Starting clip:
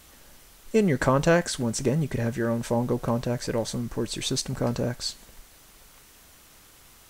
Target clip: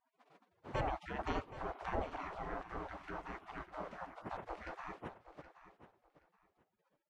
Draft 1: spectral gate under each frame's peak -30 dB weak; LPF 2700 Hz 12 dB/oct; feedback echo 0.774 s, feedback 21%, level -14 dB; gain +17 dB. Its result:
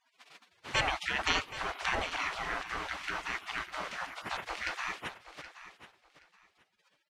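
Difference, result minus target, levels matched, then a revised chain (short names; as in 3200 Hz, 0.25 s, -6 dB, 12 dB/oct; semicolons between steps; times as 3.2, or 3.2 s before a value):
2000 Hz band +6.0 dB
spectral gate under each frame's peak -30 dB weak; LPF 730 Hz 12 dB/oct; feedback echo 0.774 s, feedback 21%, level -14 dB; gain +17 dB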